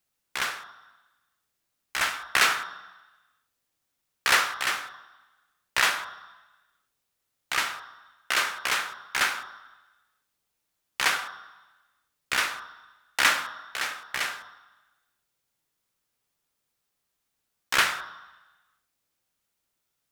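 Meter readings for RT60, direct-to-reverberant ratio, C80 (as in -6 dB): 1.1 s, 7.0 dB, 12.5 dB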